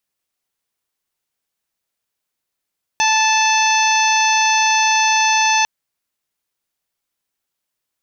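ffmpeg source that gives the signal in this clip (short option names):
-f lavfi -i "aevalsrc='0.168*sin(2*PI*876*t)+0.0794*sin(2*PI*1752*t)+0.119*sin(2*PI*2628*t)+0.0562*sin(2*PI*3504*t)+0.0473*sin(2*PI*4380*t)+0.0473*sin(2*PI*5256*t)+0.0944*sin(2*PI*6132*t)':d=2.65:s=44100"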